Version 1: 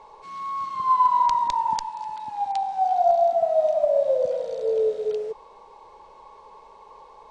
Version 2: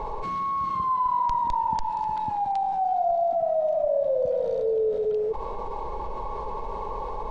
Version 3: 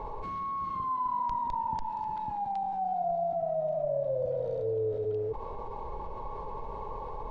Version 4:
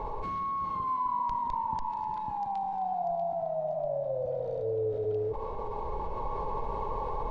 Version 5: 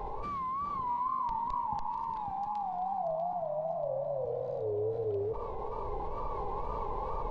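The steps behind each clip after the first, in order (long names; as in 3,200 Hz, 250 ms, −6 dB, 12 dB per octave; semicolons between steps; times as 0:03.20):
spectral tilt −3.5 dB per octave; envelope flattener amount 70%; level −8 dB
sub-octave generator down 2 octaves, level −3 dB; high-shelf EQ 4,400 Hz −8 dB; level −6.5 dB
speech leveller within 5 dB 2 s; feedback echo with a high-pass in the loop 641 ms, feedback 46%, high-pass 520 Hz, level −10 dB
tape wow and flutter 110 cents; delay with a low-pass on its return 659 ms, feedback 61%, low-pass 3,100 Hz, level −15 dB; level −2.5 dB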